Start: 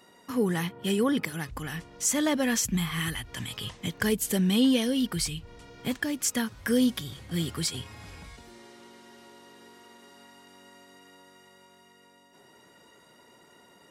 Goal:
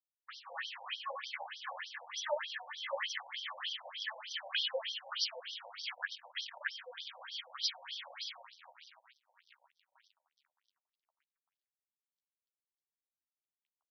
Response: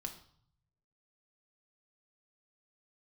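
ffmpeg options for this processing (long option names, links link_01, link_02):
-filter_complex "[0:a]asplit=2[link_01][link_02];[1:a]atrim=start_sample=2205,afade=type=out:start_time=0.13:duration=0.01,atrim=end_sample=6174,adelay=95[link_03];[link_02][link_03]afir=irnorm=-1:irlink=0,volume=-4.5dB[link_04];[link_01][link_04]amix=inputs=2:normalize=0,flanger=delay=17.5:depth=6.8:speed=0.37,asettb=1/sr,asplit=3[link_05][link_06][link_07];[link_05]atrim=end=4.214[link_08];[link_06]atrim=start=4.21:end=4.81,asetpts=PTS-STARTPTS,afade=type=in:duration=0.004:curve=qsin,afade=type=out:start_time=0.596:duration=0.004:curve=qsin,highpass=frequency=480:width=0.5412,highpass=frequency=480:width=1.3066[link_09];[link_07]atrim=start=4.806[link_10];[link_08][link_09]acrossfade=duration=0.004:curve1=hsin:curve2=qsin[link_11];[link_11][link_10]acrossfade=duration=0.004:curve1=qsin:curve2=hsin,aecho=1:1:526:0.501,acrusher=bits=6:mix=0:aa=0.5,flanger=delay=7.3:depth=7.5:regen=-9:speed=1.2:shape=triangular,asettb=1/sr,asplit=3[link_12][link_13][link_14];[link_12]atrim=end=5.914[link_15];[link_13]atrim=start=5.91:end=6.61,asetpts=PTS-STARTPTS,afade=type=in:duration=0.004:curve=qsin,afade=type=out:start_time=0.696:duration=0.004:curve=qsin,aeval=exprs='0.0794*(cos(1*acos(clip(val(0)/0.0794,-1,1)))-cos(1*PI/2))+0.0112*(cos(7*acos(clip(val(0)/0.0794,-1,1)))-cos(7*PI/2))':channel_layout=same[link_16];[link_14]atrim=start=6.606[link_17];[link_15][link_16]acrossfade=duration=0.004:curve1=hsin:curve2=qsin[link_18];[link_18][link_17]acrossfade=duration=0.004:curve1=qsin:curve2=hsin,acompressor=threshold=-32dB:ratio=5,afftfilt=real='re*between(b*sr/1024,670*pow(4400/670,0.5+0.5*sin(2*PI*3.3*pts/sr))/1.41,670*pow(4400/670,0.5+0.5*sin(2*PI*3.3*pts/sr))*1.41)':imag='im*between(b*sr/1024,670*pow(4400/670,0.5+0.5*sin(2*PI*3.3*pts/sr))/1.41,670*pow(4400/670,0.5+0.5*sin(2*PI*3.3*pts/sr))*1.41)':win_size=1024:overlap=0.75,volume=7.5dB"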